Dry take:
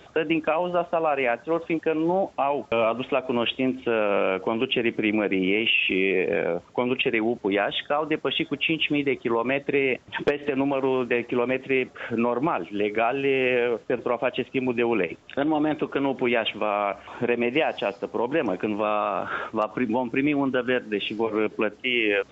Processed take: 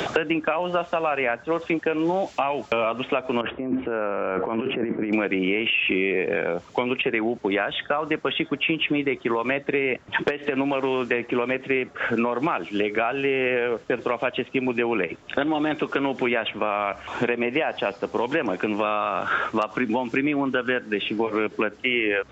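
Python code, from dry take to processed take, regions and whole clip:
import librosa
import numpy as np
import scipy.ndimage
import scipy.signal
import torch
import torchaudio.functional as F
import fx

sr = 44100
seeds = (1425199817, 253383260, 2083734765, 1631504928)

y = fx.chain(x, sr, fx.lowpass(hz=1600.0, slope=24),
    fx.over_compress(threshold_db=-32.0, ratio=-1.0), at=(3.41, 5.13))
y = fx.dynamic_eq(y, sr, hz=1500.0, q=1.3, threshold_db=-41.0, ratio=4.0, max_db=5)
y = fx.band_squash(y, sr, depth_pct=100)
y = y * 10.0 ** (-1.5 / 20.0)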